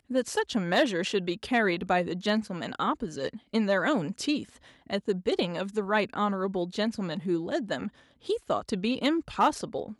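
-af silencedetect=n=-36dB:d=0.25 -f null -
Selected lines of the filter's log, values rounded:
silence_start: 4.43
silence_end: 4.90 | silence_duration: 0.47
silence_start: 7.88
silence_end: 8.27 | silence_duration: 0.39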